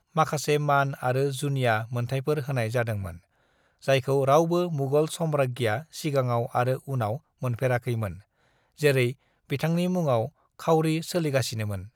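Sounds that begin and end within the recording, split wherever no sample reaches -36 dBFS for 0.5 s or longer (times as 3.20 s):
3.84–8.15 s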